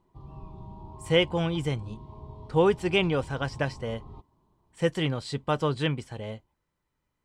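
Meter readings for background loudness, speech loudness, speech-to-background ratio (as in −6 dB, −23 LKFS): −46.0 LKFS, −27.5 LKFS, 18.5 dB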